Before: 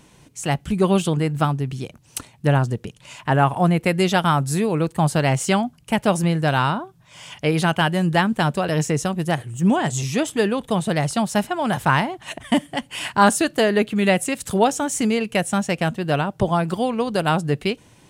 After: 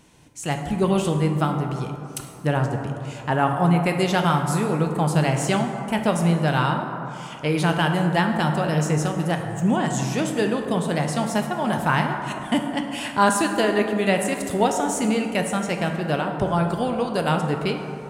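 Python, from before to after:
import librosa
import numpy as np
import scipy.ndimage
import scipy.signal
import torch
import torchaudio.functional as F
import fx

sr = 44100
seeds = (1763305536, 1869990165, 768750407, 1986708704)

y = fx.rev_plate(x, sr, seeds[0], rt60_s=2.8, hf_ratio=0.35, predelay_ms=0, drr_db=3.5)
y = y * librosa.db_to_amplitude(-3.5)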